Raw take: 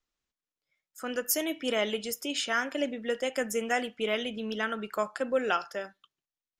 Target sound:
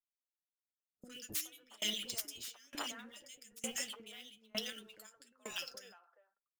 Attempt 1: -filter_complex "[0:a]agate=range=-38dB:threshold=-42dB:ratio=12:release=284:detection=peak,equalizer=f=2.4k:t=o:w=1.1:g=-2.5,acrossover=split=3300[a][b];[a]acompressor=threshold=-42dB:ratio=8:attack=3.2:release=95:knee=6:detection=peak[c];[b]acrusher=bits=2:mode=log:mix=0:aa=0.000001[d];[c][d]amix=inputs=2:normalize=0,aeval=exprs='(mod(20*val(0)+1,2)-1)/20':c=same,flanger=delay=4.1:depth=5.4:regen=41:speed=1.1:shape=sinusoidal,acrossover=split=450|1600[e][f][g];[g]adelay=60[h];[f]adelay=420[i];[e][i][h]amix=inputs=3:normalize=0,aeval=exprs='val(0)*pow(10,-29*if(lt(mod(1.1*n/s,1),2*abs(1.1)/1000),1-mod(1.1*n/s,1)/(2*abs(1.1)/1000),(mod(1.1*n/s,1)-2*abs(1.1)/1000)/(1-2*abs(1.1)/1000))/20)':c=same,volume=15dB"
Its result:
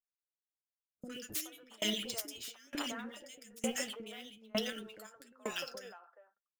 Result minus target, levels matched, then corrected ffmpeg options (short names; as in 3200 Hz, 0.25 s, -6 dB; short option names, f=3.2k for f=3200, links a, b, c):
compressor: peak gain reduction -9.5 dB
-filter_complex "[0:a]agate=range=-38dB:threshold=-42dB:ratio=12:release=284:detection=peak,equalizer=f=2.4k:t=o:w=1.1:g=-2.5,acrossover=split=3300[a][b];[a]acompressor=threshold=-53dB:ratio=8:attack=3.2:release=95:knee=6:detection=peak[c];[b]acrusher=bits=2:mode=log:mix=0:aa=0.000001[d];[c][d]amix=inputs=2:normalize=0,aeval=exprs='(mod(20*val(0)+1,2)-1)/20':c=same,flanger=delay=4.1:depth=5.4:regen=41:speed=1.1:shape=sinusoidal,acrossover=split=450|1600[e][f][g];[g]adelay=60[h];[f]adelay=420[i];[e][i][h]amix=inputs=3:normalize=0,aeval=exprs='val(0)*pow(10,-29*if(lt(mod(1.1*n/s,1),2*abs(1.1)/1000),1-mod(1.1*n/s,1)/(2*abs(1.1)/1000),(mod(1.1*n/s,1)-2*abs(1.1)/1000)/(1-2*abs(1.1)/1000))/20)':c=same,volume=15dB"